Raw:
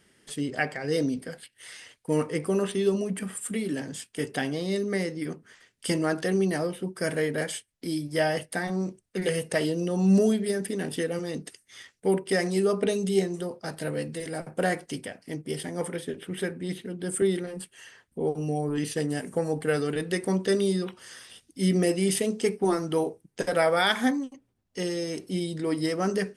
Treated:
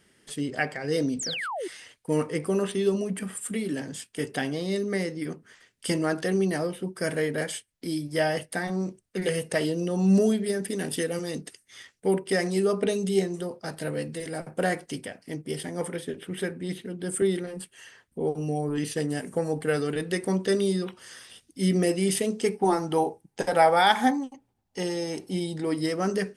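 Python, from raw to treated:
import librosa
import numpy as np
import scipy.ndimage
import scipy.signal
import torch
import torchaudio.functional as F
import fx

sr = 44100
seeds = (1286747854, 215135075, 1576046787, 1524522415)

y = fx.spec_paint(x, sr, seeds[0], shape='fall', start_s=1.19, length_s=0.49, low_hz=320.0, high_hz=8600.0, level_db=-32.0)
y = fx.high_shelf(y, sr, hz=4800.0, db=8.0, at=(10.7, 11.41))
y = fx.peak_eq(y, sr, hz=830.0, db=14.5, octaves=0.25, at=(22.54, 25.65))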